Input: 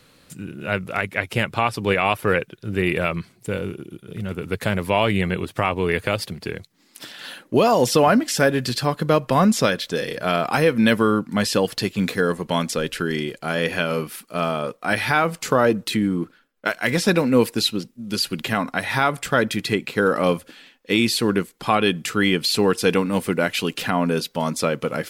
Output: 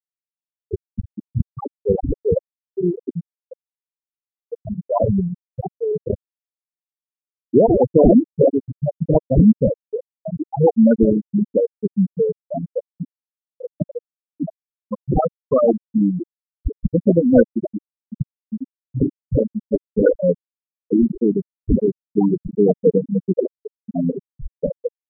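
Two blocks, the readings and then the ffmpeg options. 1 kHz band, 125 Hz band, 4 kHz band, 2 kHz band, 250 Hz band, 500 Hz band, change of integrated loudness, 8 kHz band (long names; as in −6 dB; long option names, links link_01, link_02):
−8.0 dB, +2.5 dB, below −40 dB, below −20 dB, +3.5 dB, +2.5 dB, +2.0 dB, below −40 dB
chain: -af "acrusher=samples=30:mix=1:aa=0.000001:lfo=1:lforange=30:lforate=3,afftfilt=real='re*gte(hypot(re,im),0.631)':imag='im*gte(hypot(re,im),0.631)':win_size=1024:overlap=0.75,volume=6dB"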